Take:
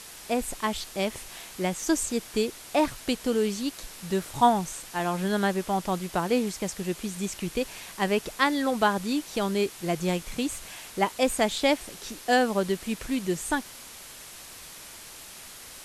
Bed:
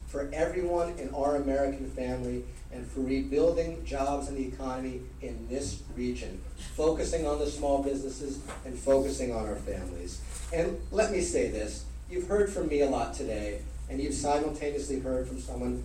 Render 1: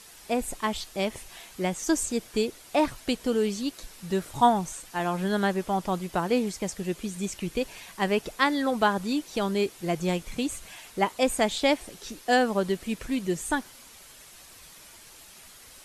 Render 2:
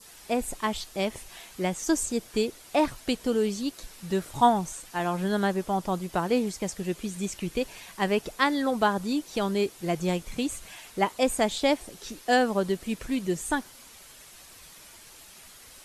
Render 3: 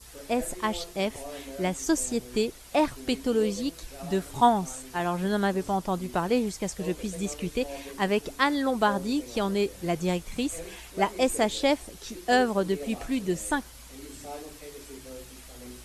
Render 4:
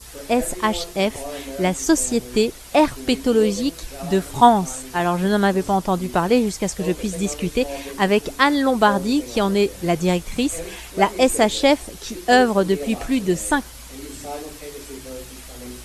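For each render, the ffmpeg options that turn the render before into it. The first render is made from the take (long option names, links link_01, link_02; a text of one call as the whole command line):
ffmpeg -i in.wav -af "afftdn=noise_reduction=7:noise_floor=-45" out.wav
ffmpeg -i in.wav -af "adynamicequalizer=threshold=0.00708:dfrequency=2300:dqfactor=0.92:tfrequency=2300:tqfactor=0.92:attack=5:release=100:ratio=0.375:range=2:mode=cutabove:tftype=bell" out.wav
ffmpeg -i in.wav -i bed.wav -filter_complex "[1:a]volume=-12.5dB[link_01];[0:a][link_01]amix=inputs=2:normalize=0" out.wav
ffmpeg -i in.wav -af "volume=8dB,alimiter=limit=-1dB:level=0:latency=1" out.wav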